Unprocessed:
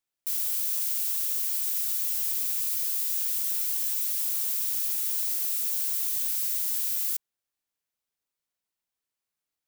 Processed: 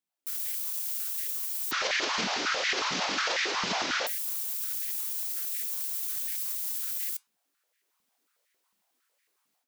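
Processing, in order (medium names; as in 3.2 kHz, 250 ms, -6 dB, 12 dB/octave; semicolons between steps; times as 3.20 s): 1.71–4.07 s: one-bit delta coder 32 kbps, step -28.5 dBFS; level rider gain up to 15.5 dB; peak limiter -19 dBFS, peak gain reduction 15.5 dB; flange 0.54 Hz, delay 6.1 ms, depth 6.9 ms, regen -84%; step-sequenced high-pass 11 Hz 200–1900 Hz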